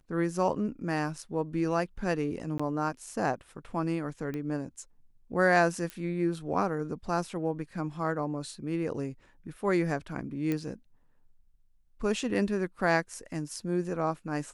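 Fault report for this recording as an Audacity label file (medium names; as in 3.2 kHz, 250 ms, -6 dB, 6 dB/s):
2.580000	2.600000	dropout 15 ms
4.340000	4.340000	pop -24 dBFS
5.900000	5.900000	pop -22 dBFS
10.520000	10.520000	pop -18 dBFS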